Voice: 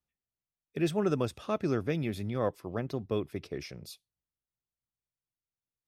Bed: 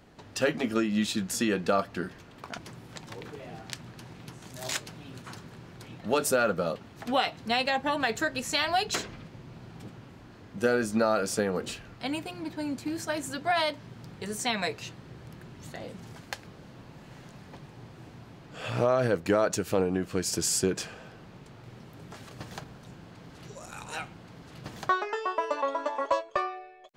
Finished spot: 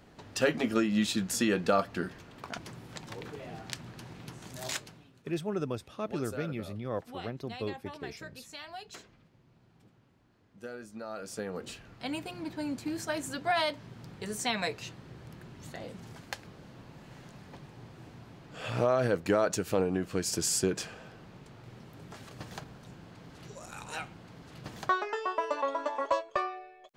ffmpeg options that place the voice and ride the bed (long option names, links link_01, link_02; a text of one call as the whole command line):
ffmpeg -i stem1.wav -i stem2.wav -filter_complex "[0:a]adelay=4500,volume=-4.5dB[link_01];[1:a]volume=15dB,afade=type=out:start_time=4.55:duration=0.57:silence=0.141254,afade=type=in:start_time=11.02:duration=1.34:silence=0.16788[link_02];[link_01][link_02]amix=inputs=2:normalize=0" out.wav